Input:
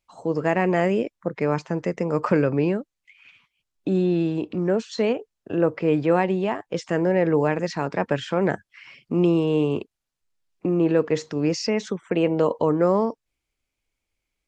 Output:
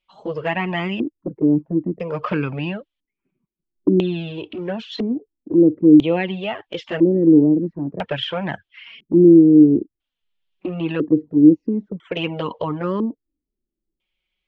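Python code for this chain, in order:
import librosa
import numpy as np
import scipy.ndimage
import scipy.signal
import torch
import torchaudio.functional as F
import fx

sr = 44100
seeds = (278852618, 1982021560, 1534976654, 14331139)

y = fx.filter_lfo_lowpass(x, sr, shape='square', hz=0.5, low_hz=310.0, high_hz=3200.0, q=5.2)
y = fx.env_flanger(y, sr, rest_ms=5.4, full_db=-11.0)
y = F.gain(torch.from_numpy(y), 1.0).numpy()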